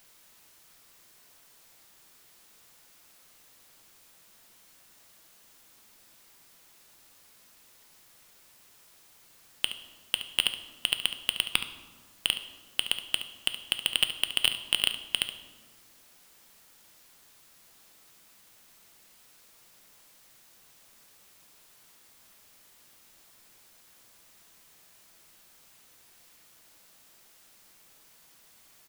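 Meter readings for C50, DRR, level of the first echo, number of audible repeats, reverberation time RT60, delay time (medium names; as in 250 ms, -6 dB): 9.0 dB, 7.5 dB, -12.5 dB, 1, 1.5 s, 71 ms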